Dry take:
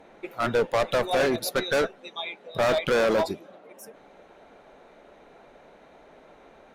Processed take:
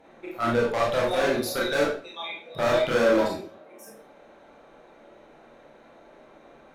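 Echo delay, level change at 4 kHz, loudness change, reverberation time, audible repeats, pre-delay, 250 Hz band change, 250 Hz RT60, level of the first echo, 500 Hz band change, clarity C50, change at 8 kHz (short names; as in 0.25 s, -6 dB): none, -0.5 dB, +0.5 dB, 0.40 s, none, 26 ms, +2.5 dB, 0.45 s, none, +0.5 dB, 3.5 dB, -1.0 dB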